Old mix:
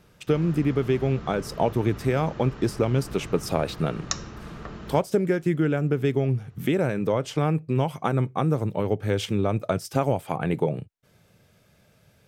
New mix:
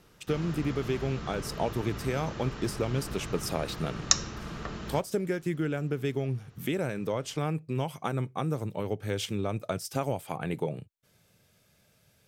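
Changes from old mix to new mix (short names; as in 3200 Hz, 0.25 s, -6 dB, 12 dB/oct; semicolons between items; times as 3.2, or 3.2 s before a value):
speech -7.5 dB; master: add high shelf 2900 Hz +8.5 dB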